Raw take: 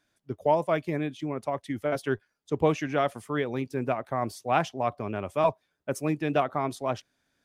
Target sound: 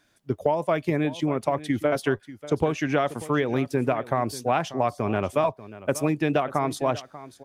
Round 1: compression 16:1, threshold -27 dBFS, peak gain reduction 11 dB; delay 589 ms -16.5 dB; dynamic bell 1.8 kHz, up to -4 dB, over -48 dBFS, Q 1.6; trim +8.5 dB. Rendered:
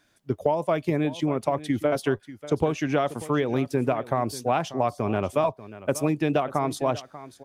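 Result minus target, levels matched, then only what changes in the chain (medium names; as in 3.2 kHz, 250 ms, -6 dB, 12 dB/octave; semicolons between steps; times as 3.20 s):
2 kHz band -2.5 dB
remove: dynamic bell 1.8 kHz, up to -4 dB, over -48 dBFS, Q 1.6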